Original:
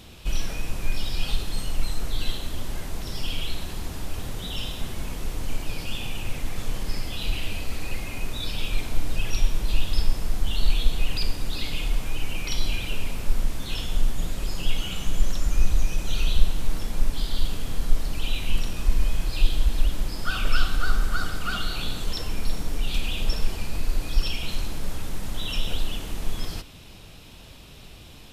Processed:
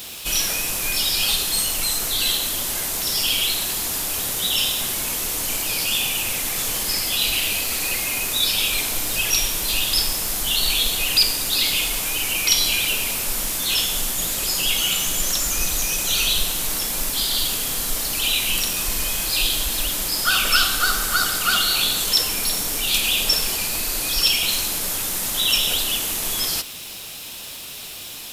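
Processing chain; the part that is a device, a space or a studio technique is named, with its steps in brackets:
turntable without a phono preamp (RIAA equalisation recording; white noise bed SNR 26 dB)
level +8 dB

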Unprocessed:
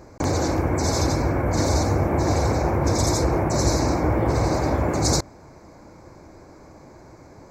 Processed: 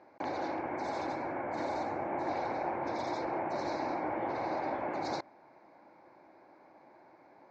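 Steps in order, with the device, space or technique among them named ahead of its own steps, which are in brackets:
phone earpiece (loudspeaker in its box 380–3,500 Hz, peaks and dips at 450 Hz −7 dB, 830 Hz +4 dB, 1,200 Hz −5 dB)
0:00.81–0:02.29: high shelf with overshoot 7,600 Hz +13 dB, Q 1.5
level −8.5 dB

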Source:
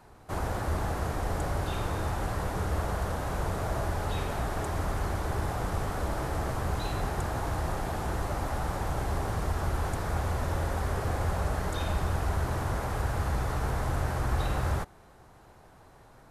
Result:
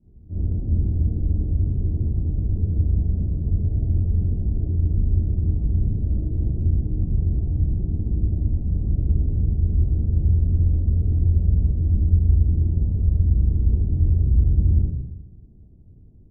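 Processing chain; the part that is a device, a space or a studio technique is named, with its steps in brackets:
next room (low-pass filter 270 Hz 24 dB per octave; convolution reverb RT60 0.95 s, pre-delay 5 ms, DRR −8.5 dB)

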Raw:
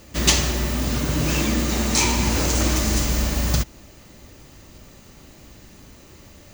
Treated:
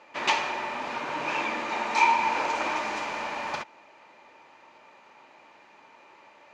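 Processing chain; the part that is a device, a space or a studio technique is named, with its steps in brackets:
tin-can telephone (band-pass filter 670–2,100 Hz; hollow resonant body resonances 910/2,400 Hz, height 12 dB, ringing for 30 ms)

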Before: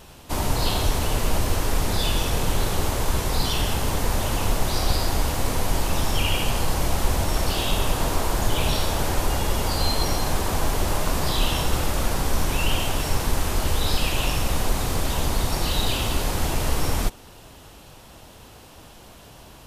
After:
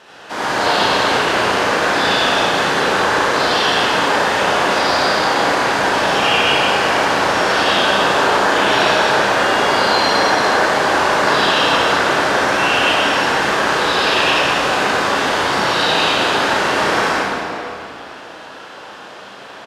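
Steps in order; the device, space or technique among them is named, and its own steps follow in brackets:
station announcement (band-pass filter 340–4,800 Hz; parametric band 1,600 Hz +8 dB 0.58 octaves; loudspeakers that aren't time-aligned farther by 12 metres −5 dB, 33 metres −9 dB; convolution reverb RT60 2.9 s, pre-delay 57 ms, DRR −7.5 dB)
level +3 dB

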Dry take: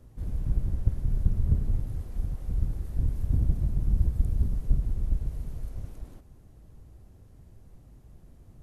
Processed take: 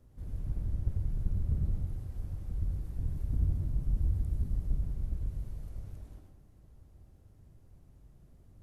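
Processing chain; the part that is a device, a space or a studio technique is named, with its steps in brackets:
bathroom (convolution reverb RT60 0.60 s, pre-delay 85 ms, DRR 3.5 dB)
level −8 dB

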